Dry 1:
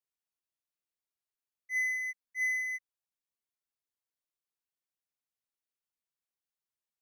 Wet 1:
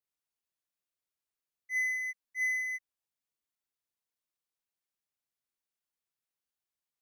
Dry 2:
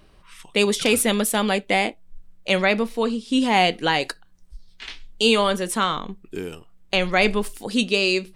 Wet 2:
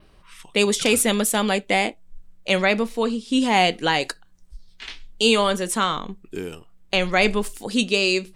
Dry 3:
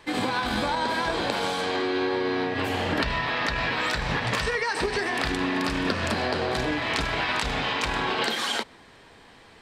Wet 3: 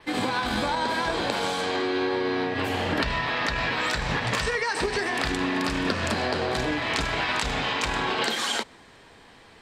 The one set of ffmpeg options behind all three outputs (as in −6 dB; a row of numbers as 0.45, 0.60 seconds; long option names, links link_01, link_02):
-af "adynamicequalizer=threshold=0.00708:dfrequency=7200:dqfactor=2.2:tfrequency=7200:tqfactor=2.2:attack=5:release=100:ratio=0.375:range=2.5:mode=boostabove:tftype=bell"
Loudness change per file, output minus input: 0.0, 0.0, 0.0 LU